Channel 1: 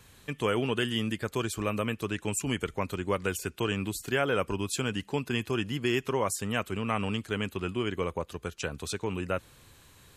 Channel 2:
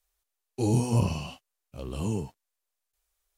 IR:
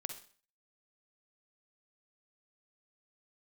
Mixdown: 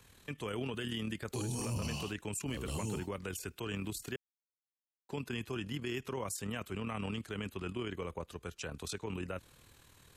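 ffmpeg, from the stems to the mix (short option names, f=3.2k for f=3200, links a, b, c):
-filter_complex "[0:a]tremolo=f=39:d=0.571,volume=-2.5dB,asplit=3[a][b][c];[a]atrim=end=4.16,asetpts=PTS-STARTPTS,afade=t=out:st=4.156:d=0.004:c=hsin[d];[b]atrim=start=4.16:end=5.09,asetpts=PTS-STARTPTS,volume=0[e];[c]atrim=start=5.09,asetpts=PTS-STARTPTS,afade=t=in:d=0.004:c=hsin[f];[d][e][f]concat=n=3:v=0:a=1[g];[1:a]highshelf=f=3.3k:g=10,adelay=750,volume=-5dB[h];[g][h]amix=inputs=2:normalize=0,acrossover=split=290|3000[i][j][k];[j]acompressor=threshold=-34dB:ratio=6[l];[i][l][k]amix=inputs=3:normalize=0,alimiter=level_in=4.5dB:limit=-24dB:level=0:latency=1:release=17,volume=-4.5dB"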